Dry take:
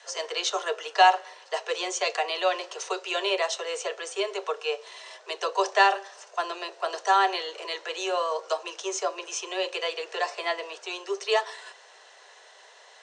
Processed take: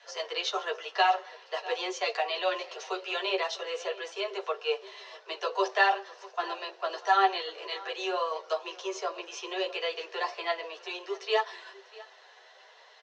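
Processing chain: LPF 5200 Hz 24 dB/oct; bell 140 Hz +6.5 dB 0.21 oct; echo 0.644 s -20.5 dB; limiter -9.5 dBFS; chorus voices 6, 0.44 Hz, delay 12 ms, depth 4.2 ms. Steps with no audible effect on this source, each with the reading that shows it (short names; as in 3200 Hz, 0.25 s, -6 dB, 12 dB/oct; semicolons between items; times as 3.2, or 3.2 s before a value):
bell 140 Hz: input band starts at 320 Hz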